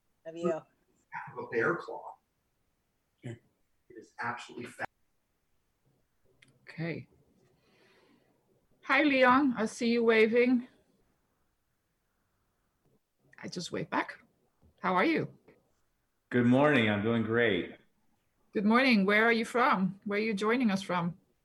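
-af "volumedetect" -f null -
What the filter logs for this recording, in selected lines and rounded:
mean_volume: -31.8 dB
max_volume: -13.3 dB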